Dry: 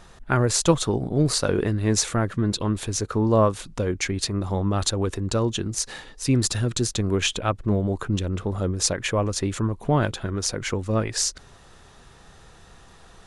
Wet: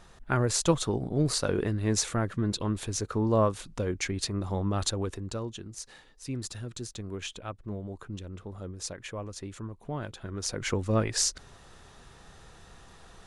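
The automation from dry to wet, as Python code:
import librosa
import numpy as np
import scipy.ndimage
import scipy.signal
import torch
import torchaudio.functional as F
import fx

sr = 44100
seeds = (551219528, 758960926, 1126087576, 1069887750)

y = fx.gain(x, sr, db=fx.line((4.91, -5.5), (5.59, -14.5), (10.04, -14.5), (10.71, -2.5)))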